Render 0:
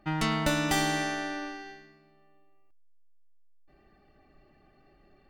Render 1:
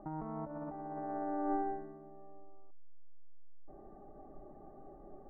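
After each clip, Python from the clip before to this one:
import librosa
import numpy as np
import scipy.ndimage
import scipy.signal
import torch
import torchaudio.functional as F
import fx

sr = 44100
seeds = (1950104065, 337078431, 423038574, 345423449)

y = scipy.signal.sosfilt(scipy.signal.cheby2(4, 60, 3100.0, 'lowpass', fs=sr, output='sos'), x)
y = fx.peak_eq(y, sr, hz=75.0, db=-11.5, octaves=3.0)
y = fx.over_compress(y, sr, threshold_db=-44.0, ratio=-1.0)
y = F.gain(torch.from_numpy(y), 5.0).numpy()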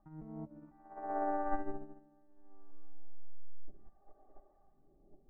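y = fx.phaser_stages(x, sr, stages=2, low_hz=120.0, high_hz=1300.0, hz=0.64, feedback_pct=35)
y = fx.echo_feedback(y, sr, ms=221, feedback_pct=58, wet_db=-12)
y = fx.upward_expand(y, sr, threshold_db=-49.0, expansion=2.5)
y = F.gain(torch.from_numpy(y), 9.0).numpy()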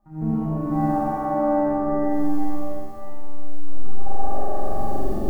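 y = fx.recorder_agc(x, sr, target_db=-25.5, rise_db_per_s=67.0, max_gain_db=30)
y = fx.room_flutter(y, sr, wall_m=7.6, rt60_s=1.3)
y = fx.rev_plate(y, sr, seeds[0], rt60_s=3.6, hf_ratio=0.95, predelay_ms=0, drr_db=-9.0)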